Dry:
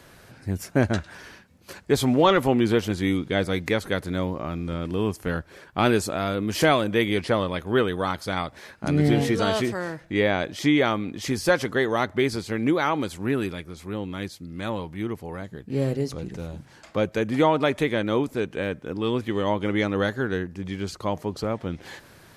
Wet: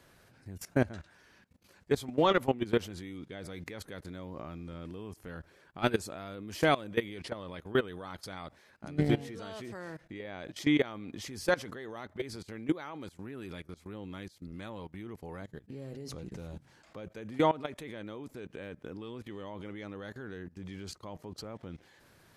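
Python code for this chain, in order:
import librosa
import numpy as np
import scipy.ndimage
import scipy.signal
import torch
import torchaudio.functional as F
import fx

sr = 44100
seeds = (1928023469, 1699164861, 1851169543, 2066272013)

y = fx.level_steps(x, sr, step_db=19)
y = y * librosa.db_to_amplitude(-4.5)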